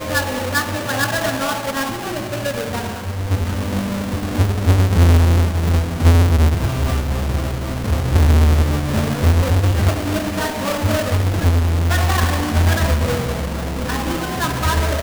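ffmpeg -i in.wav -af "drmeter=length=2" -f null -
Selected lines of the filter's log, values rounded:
Channel 1: DR: 6.7
Overall DR: 6.7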